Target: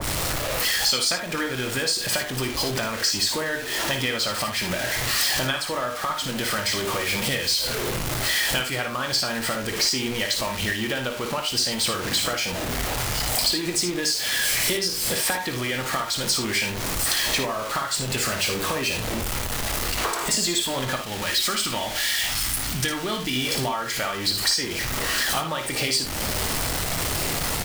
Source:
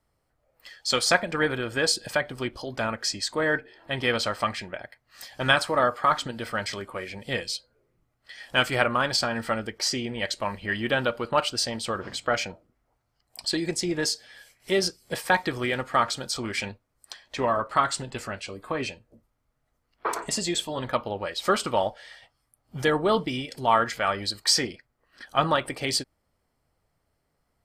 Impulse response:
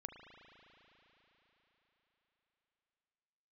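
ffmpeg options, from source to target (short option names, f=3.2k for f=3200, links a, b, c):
-filter_complex "[0:a]aeval=exprs='val(0)+0.5*0.0422*sgn(val(0))':c=same,asettb=1/sr,asplit=3[a][b][c];[a]atrim=end=20.964[d];[b]atrim=start=20.96:end=23.36,asetpts=PTS-STARTPTS,afade=t=in:d=0.004:c=qsin,afade=t=out:st=2.396:d=0.004:c=qsin,equalizer=f=125:t=o:w=1:g=-5,equalizer=f=500:t=o:w=1:g=-10,equalizer=f=1k:t=o:w=1:g=-4[e];[c]atrim=start=23.356[f];[d][e]acrossfade=d=0.004:c1=hsin:c2=qsin[g];[g][f]acrossfade=d=0.004:c1=qsin:c2=hsin,acompressor=threshold=-31dB:ratio=10,asplit=2[h][i];[i]adelay=23,volume=-12dB[j];[h][j]amix=inputs=2:normalize=0,aecho=1:1:56|76:0.398|0.266,adynamicequalizer=threshold=0.00398:dfrequency=2000:dqfactor=0.7:tfrequency=2000:tqfactor=0.7:attack=5:release=100:ratio=0.375:range=3:mode=boostabove:tftype=highshelf,volume=5dB"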